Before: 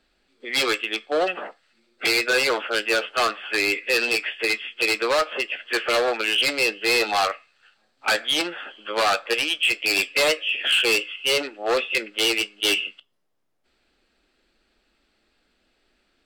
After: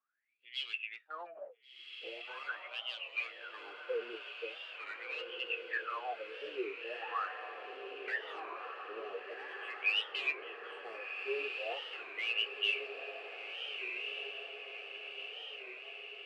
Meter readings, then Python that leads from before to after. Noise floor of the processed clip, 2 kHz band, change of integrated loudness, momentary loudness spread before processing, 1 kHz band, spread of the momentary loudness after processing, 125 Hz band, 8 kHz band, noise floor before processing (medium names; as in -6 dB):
-56 dBFS, -15.0 dB, -17.5 dB, 7 LU, -16.0 dB, 12 LU, under -35 dB, under -35 dB, -69 dBFS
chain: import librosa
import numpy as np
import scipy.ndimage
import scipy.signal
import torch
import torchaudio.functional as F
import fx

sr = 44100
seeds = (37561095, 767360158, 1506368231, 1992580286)

y = fx.low_shelf(x, sr, hz=110.0, db=9.5)
y = fx.wah_lfo(y, sr, hz=0.42, low_hz=390.0, high_hz=3000.0, q=21.0)
y = fx.echo_diffused(y, sr, ms=1471, feedback_pct=65, wet_db=-5.5)
y = fx.record_warp(y, sr, rpm=33.33, depth_cents=160.0)
y = F.gain(torch.from_numpy(y), -2.0).numpy()